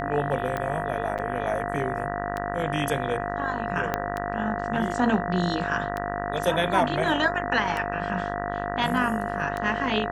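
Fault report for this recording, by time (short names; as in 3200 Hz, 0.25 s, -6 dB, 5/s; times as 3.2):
buzz 50 Hz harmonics 39 -32 dBFS
tick 33 1/3 rpm -16 dBFS
tone 700 Hz -32 dBFS
1.18–1.19 gap 7.4 ms
3.94 pop -11 dBFS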